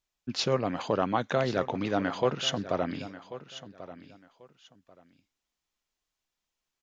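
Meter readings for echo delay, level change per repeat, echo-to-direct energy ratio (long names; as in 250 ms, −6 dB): 1,089 ms, −13.0 dB, −15.0 dB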